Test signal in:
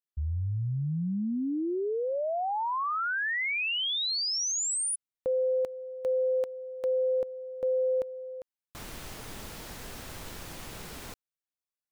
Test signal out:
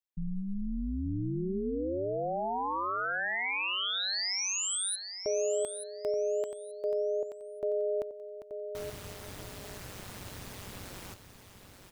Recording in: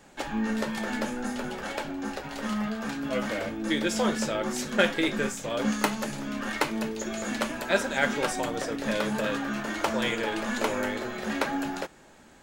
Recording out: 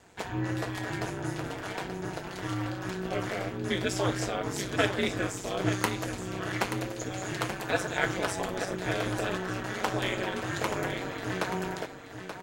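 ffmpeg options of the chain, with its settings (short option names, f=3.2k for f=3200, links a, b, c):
-af "aeval=exprs='val(0)*sin(2*PI*96*n/s)':c=same,aecho=1:1:880|1760|2640:0.355|0.071|0.0142"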